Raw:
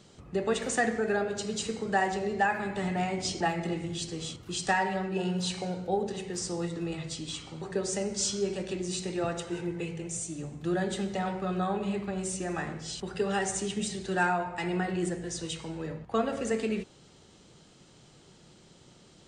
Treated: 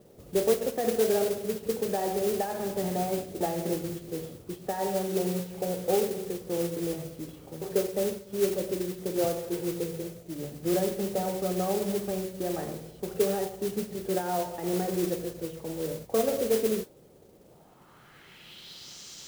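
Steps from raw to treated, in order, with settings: tilt shelf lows -8 dB, about 1300 Hz; limiter -22 dBFS, peak gain reduction 10.5 dB; low-pass sweep 520 Hz -> 6300 Hz, 17.39–18.99; modulation noise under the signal 12 dB; gain +5.5 dB

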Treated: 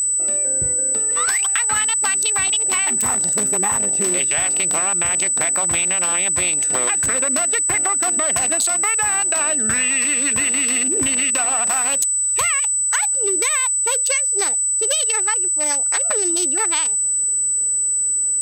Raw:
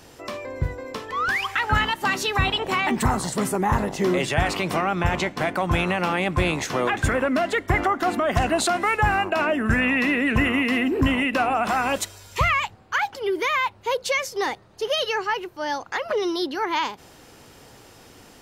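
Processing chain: Wiener smoothing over 41 samples; tilt +4.5 dB/oct; compressor, threshold -30 dBFS, peak gain reduction 13.5 dB; whine 8000 Hz -25 dBFS; gain +8.5 dB

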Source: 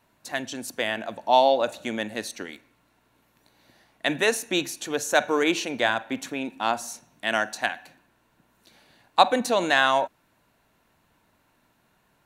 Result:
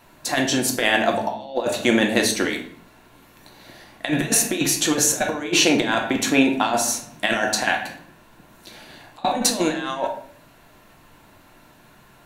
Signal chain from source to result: dynamic EQ 1200 Hz, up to -3 dB, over -29 dBFS, Q 1.5; negative-ratio compressor -29 dBFS, ratio -0.5; on a send: reverb RT60 0.55 s, pre-delay 3 ms, DRR 2.5 dB; on the sum: gain +7.5 dB

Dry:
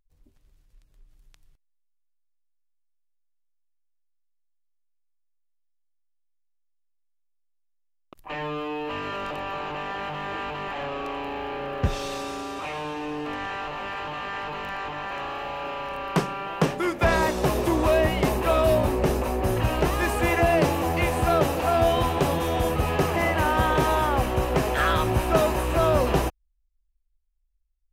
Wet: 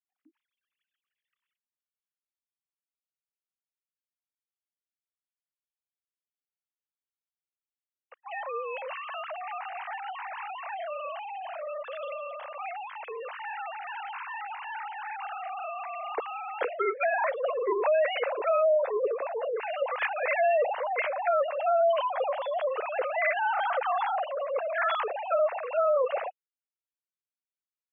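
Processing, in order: sine-wave speech; limiter -15.5 dBFS, peak gain reduction 8 dB; spectral gate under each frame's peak -25 dB strong; gain -2.5 dB

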